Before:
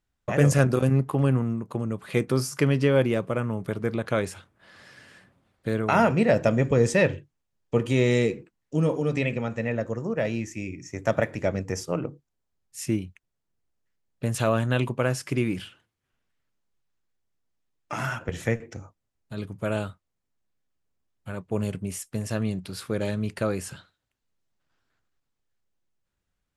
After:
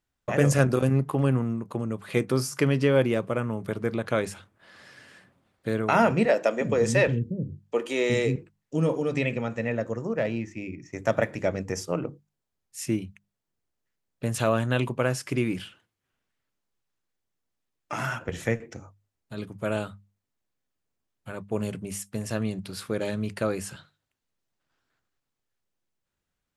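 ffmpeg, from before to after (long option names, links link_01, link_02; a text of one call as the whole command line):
ffmpeg -i in.wav -filter_complex "[0:a]asettb=1/sr,asplit=3[link_01][link_02][link_03];[link_01]atrim=end=6.254[link_04];[link_02]atrim=start=6.25:end=8.36,asetpts=PTS-STARTPTS,afade=type=in:duration=0.004:curve=qsin,afade=type=out:start_time=2.106:duration=0.004:curve=qsin,acrossover=split=280[link_05][link_06];[link_05]adelay=360[link_07];[link_07][link_06]amix=inputs=2:normalize=0,atrim=end_sample=93051[link_08];[link_03]atrim=start=8.356[link_09];[link_04][link_08]acrossfade=duration=0.004:curve1=hsin:curve2=qsin[link_10];[link_10][link_09]acrossfade=duration=0.004:curve1=qsin:curve2=hsin,asettb=1/sr,asplit=3[link_11][link_12][link_13];[link_11]atrim=end=10.174[link_14];[link_12]atrim=start=10.17:end=10.93,asetpts=PTS-STARTPTS,afade=type=in:duration=0.004:curve=qsin,afade=type=out:start_time=0.756:duration=0.004:curve=qsin,adynamicsmooth=sensitivity=2.5:basefreq=3400[link_15];[link_13]atrim=start=10.926[link_16];[link_14][link_15]acrossfade=duration=0.004:curve1=hsin:curve2=qsin[link_17];[link_17][link_16]acrossfade=duration=0.004:curve1=qsin:curve2=hsin,lowshelf=frequency=73:gain=-6.5,bandreject=frequency=50:width_type=h:width=6,bandreject=frequency=100:width_type=h:width=6,bandreject=frequency=150:width_type=h:width=6,bandreject=frequency=200:width_type=h:width=6" out.wav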